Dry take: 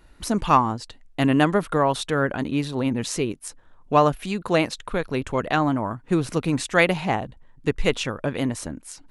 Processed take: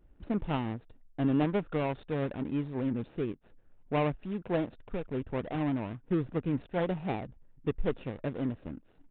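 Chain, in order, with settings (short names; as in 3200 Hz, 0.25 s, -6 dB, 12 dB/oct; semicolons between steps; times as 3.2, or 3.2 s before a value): median filter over 41 samples; downsampling 8000 Hz; gain -7 dB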